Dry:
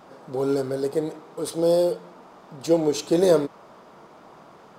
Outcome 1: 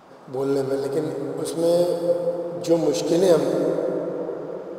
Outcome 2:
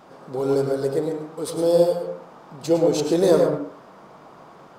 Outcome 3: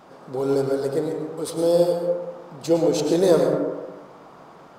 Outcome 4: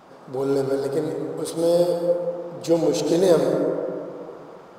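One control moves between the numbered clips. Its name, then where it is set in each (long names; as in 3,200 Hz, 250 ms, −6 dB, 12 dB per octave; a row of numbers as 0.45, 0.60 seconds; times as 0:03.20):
dense smooth reverb, RT60: 5.2, 0.5, 1.2, 2.4 seconds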